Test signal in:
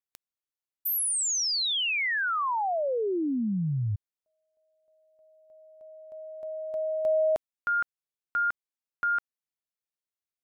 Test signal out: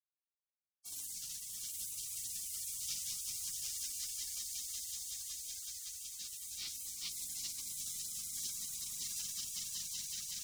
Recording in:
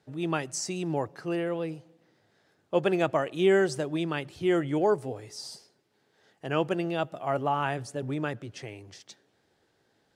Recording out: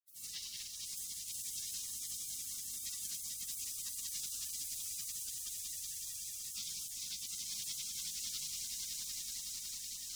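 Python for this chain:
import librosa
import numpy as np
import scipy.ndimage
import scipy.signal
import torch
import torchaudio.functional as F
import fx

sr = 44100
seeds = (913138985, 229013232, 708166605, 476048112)

p1 = fx.filter_lfo_notch(x, sr, shape='square', hz=0.2, low_hz=370.0, high_hz=5800.0, q=1.0)
p2 = fx.sample_hold(p1, sr, seeds[0], rate_hz=1100.0, jitter_pct=20)
p3 = fx.filter_lfo_highpass(p2, sr, shape='saw_down', hz=2.4, low_hz=620.0, high_hz=1700.0, q=2.2)
p4 = fx.spec_gate(p3, sr, threshold_db=-25, keep='strong')
p5 = fx.room_shoebox(p4, sr, seeds[1], volume_m3=2200.0, walls='mixed', distance_m=4.9)
p6 = np.sign(p5) * np.maximum(np.abs(p5) - 10.0 ** (-47.5 / 20.0), 0.0)
p7 = fx.rider(p6, sr, range_db=5, speed_s=0.5)
p8 = fx.peak_eq(p7, sr, hz=250.0, db=-3.5, octaves=1.4)
p9 = p8 + fx.echo_swell(p8, sr, ms=187, loudest=5, wet_db=-4, dry=0)
p10 = fx.spec_gate(p9, sr, threshold_db=-30, keep='weak')
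p11 = fx.tone_stack(p10, sr, knobs='5-5-5')
p12 = fx.band_squash(p11, sr, depth_pct=40)
y = p12 * 10.0 ** (10.0 / 20.0)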